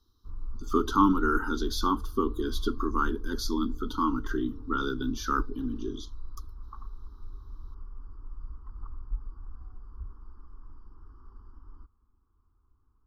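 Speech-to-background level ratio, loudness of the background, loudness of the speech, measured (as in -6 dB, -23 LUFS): 14.5 dB, -44.0 LUFS, -29.5 LUFS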